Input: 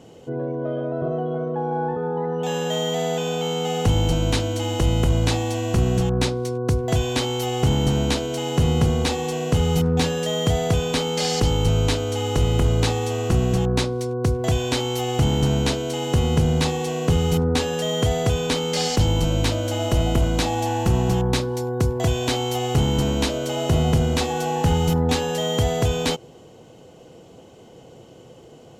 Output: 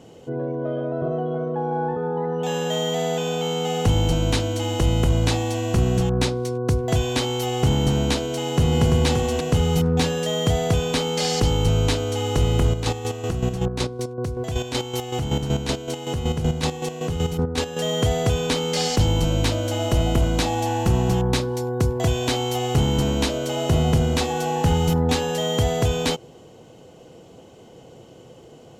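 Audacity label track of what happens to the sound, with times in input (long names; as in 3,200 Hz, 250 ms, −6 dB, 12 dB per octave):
8.380000	9.060000	delay throw 340 ms, feedback 10%, level −5 dB
12.670000	17.820000	square-wave tremolo 5.3 Hz, depth 60%, duty 35%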